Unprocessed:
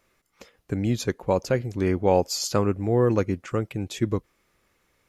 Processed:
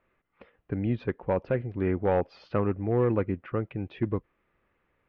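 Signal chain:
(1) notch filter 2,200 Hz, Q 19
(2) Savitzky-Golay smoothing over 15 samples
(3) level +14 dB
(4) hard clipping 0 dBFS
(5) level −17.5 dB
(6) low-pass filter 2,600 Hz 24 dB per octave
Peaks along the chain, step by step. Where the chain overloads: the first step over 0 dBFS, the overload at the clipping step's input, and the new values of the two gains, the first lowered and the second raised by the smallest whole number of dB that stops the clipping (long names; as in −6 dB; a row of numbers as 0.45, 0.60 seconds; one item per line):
−7.0, −7.0, +7.0, 0.0, −17.5, −16.5 dBFS
step 3, 7.0 dB
step 3 +7 dB, step 5 −10.5 dB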